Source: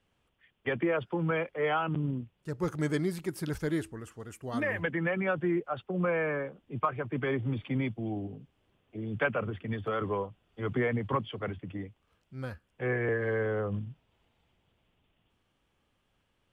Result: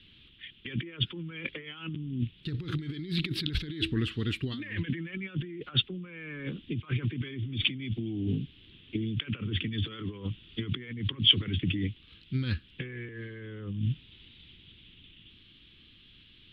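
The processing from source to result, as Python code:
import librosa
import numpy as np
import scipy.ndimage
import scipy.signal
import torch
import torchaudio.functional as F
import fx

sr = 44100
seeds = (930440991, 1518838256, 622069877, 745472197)

y = fx.over_compress(x, sr, threshold_db=-41.0, ratio=-1.0)
y = fx.curve_eq(y, sr, hz=(330.0, 670.0, 3800.0, 6300.0), db=(0, -25, 14, -21))
y = y * librosa.db_to_amplitude(7.5)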